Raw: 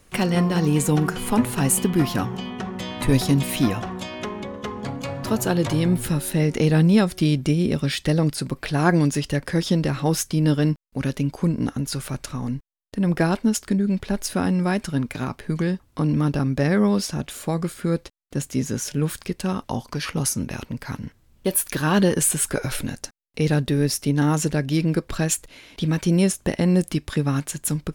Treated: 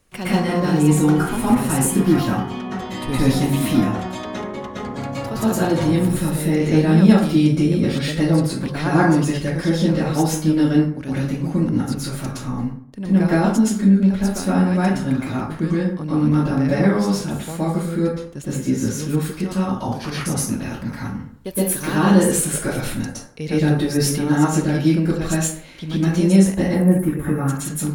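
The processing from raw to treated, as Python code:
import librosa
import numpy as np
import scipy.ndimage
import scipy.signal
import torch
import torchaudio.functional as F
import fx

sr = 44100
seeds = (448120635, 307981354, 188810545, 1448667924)

y = fx.curve_eq(x, sr, hz=(1900.0, 4700.0, 12000.0), db=(0, -26, 10), at=(26.62, 27.48))
y = fx.rev_plate(y, sr, seeds[0], rt60_s=0.61, hf_ratio=0.5, predelay_ms=105, drr_db=-9.5)
y = fx.sustainer(y, sr, db_per_s=34.0, at=(23.88, 24.33))
y = y * librosa.db_to_amplitude(-7.5)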